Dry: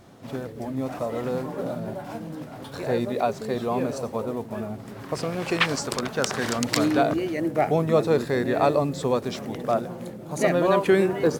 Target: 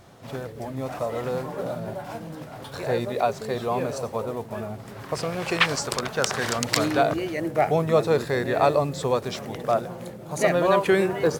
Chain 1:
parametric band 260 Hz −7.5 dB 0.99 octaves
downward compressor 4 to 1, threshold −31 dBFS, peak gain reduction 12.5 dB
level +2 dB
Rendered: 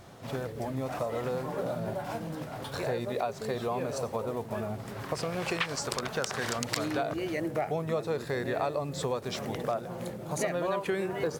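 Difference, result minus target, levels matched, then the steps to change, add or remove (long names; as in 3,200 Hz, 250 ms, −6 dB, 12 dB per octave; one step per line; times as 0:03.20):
downward compressor: peak gain reduction +12.5 dB
remove: downward compressor 4 to 1, threshold −31 dBFS, peak gain reduction 12.5 dB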